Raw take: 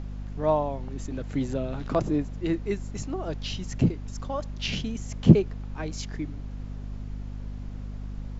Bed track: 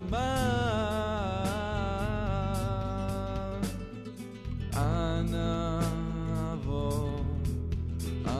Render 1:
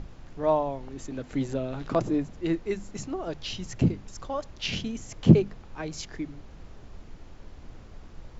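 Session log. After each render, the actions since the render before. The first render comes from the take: hum notches 50/100/150/200/250 Hz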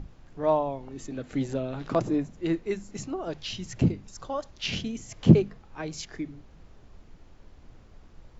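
noise print and reduce 6 dB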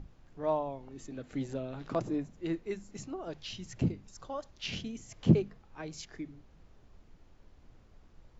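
trim -7 dB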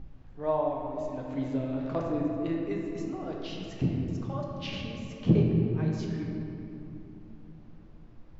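distance through air 110 m; simulated room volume 140 m³, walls hard, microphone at 0.48 m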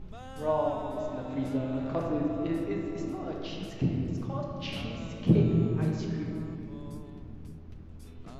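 add bed track -15.5 dB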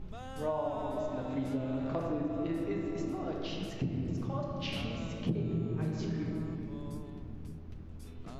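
compression 5:1, threshold -30 dBFS, peak gain reduction 13 dB

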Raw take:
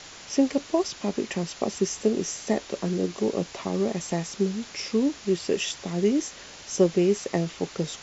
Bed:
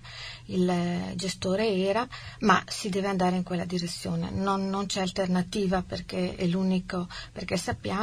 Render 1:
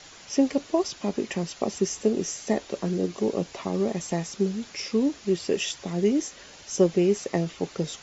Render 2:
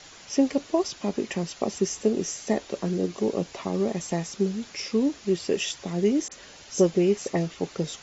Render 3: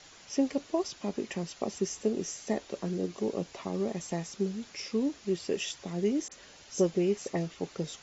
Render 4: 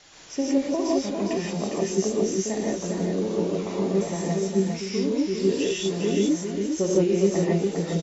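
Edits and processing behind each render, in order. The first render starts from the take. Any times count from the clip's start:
noise reduction 6 dB, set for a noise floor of -45 dBFS
6.28–7.55 s: phase dispersion highs, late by 42 ms, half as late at 2.6 kHz
trim -6 dB
delay 405 ms -5 dB; gated-style reverb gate 190 ms rising, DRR -4.5 dB

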